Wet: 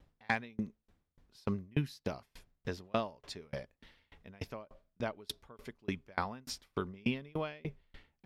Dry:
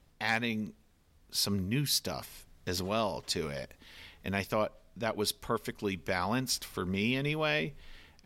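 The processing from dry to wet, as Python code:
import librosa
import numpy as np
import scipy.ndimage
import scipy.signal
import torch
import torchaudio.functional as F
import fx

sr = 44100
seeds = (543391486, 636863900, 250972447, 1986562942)

y = fx.lowpass(x, sr, hz=2200.0, slope=6)
y = fx.tremolo_decay(y, sr, direction='decaying', hz=3.4, depth_db=34)
y = F.gain(torch.from_numpy(y), 3.5).numpy()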